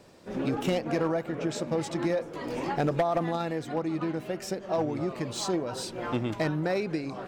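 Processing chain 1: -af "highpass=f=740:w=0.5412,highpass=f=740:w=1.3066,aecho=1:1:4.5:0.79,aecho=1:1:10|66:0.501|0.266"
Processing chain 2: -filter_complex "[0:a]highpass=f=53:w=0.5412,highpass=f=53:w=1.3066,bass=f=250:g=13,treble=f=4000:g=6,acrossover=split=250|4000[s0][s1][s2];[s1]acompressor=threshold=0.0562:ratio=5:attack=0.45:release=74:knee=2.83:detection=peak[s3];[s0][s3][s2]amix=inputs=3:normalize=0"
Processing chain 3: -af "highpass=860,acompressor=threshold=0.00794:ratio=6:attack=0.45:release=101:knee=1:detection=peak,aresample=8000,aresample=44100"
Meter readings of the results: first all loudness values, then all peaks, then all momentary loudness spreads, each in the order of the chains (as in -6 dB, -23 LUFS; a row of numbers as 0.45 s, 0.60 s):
-34.0 LUFS, -26.5 LUFS, -48.5 LUFS; -15.5 dBFS, -9.5 dBFS, -34.5 dBFS; 11 LU, 7 LU, 2 LU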